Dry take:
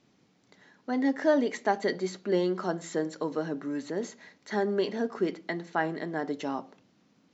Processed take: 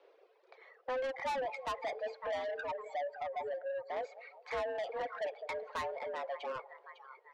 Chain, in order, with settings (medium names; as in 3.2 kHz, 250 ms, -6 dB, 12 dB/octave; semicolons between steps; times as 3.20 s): 2.56–3.90 s: spectral contrast enhancement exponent 2.3; in parallel at +1.5 dB: compression, threshold -36 dBFS, peak gain reduction 16 dB; on the sum: distance through air 360 m; on a send: two-band feedback delay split 650 Hz, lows 203 ms, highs 553 ms, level -13 dB; on the sum: frequency shift +260 Hz; saturation -29 dBFS, distortion -7 dB; 6.15–6.56 s: Chebyshev high-pass 210 Hz, order 4; reverb removal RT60 1.8 s; trim -3 dB